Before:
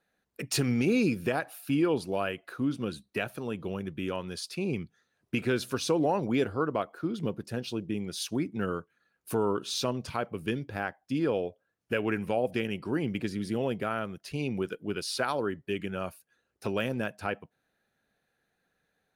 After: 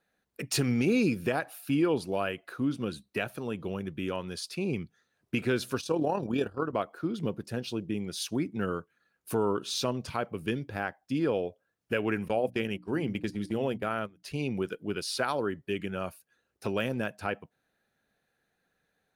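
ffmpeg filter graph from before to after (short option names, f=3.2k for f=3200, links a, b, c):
-filter_complex "[0:a]asettb=1/sr,asplit=3[a][b][c];[a]atrim=end=5.814[d];[b]atrim=start=5.81:end=6.73,asetpts=PTS-STARTPTS,afade=t=in:d=0.004:c=qsin,afade=t=out:st=0.916:d=0.004:c=qsin,agate=range=-9dB:threshold=-34dB:ratio=16:release=100:detection=peak,tremolo=f=38:d=0.519,asuperstop=centerf=2100:order=20:qfactor=5.7[e];[c]atrim=start=6.726[f];[d][e]acrossfade=d=0.004:c1=hsin:c2=qsin[g];[g][f]acrossfade=d=0.004:c1=qsin:c2=hsin,asettb=1/sr,asplit=3[h][i][j];[h]atrim=end=12.284[k];[i]atrim=start=12.28:end=14.23,asetpts=PTS-STARTPTS,afade=t=in:d=0.004:c=qsin,afade=t=out:st=1.946:d=0.004:c=qsin,agate=range=-18dB:threshold=-36dB:ratio=16:release=100:detection=peak,bandreject=f=60:t=h:w=6,bandreject=f=120:t=h:w=6,bandreject=f=180:t=h:w=6,bandreject=f=240:t=h:w=6,bandreject=f=300:t=h:w=6[l];[j]atrim=start=14.226[m];[k][l]acrossfade=d=0.004:c1=hsin:c2=qsin[n];[n][m]acrossfade=d=0.004:c1=qsin:c2=hsin"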